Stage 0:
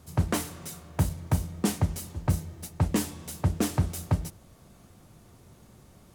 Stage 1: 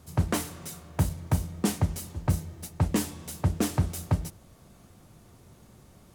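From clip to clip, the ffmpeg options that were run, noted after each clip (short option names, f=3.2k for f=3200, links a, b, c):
-af anull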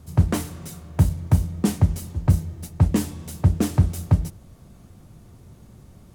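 -af "lowshelf=f=280:g=9.5"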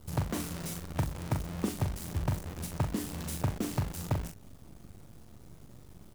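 -filter_complex "[0:a]acompressor=threshold=-26dB:ratio=6,acrusher=bits=7:dc=4:mix=0:aa=0.000001,asplit=2[a][b];[b]adelay=41,volume=-6dB[c];[a][c]amix=inputs=2:normalize=0,volume=-2.5dB"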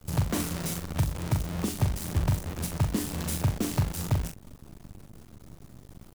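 -filter_complex "[0:a]acrossover=split=150|2600[a][b][c];[b]alimiter=level_in=2.5dB:limit=-24dB:level=0:latency=1:release=243,volume=-2.5dB[d];[a][d][c]amix=inputs=3:normalize=0,aeval=exprs='sgn(val(0))*max(abs(val(0))-0.00188,0)':c=same,volume=7dB"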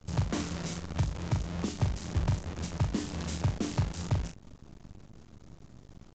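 -af "aresample=16000,aresample=44100,volume=-3dB"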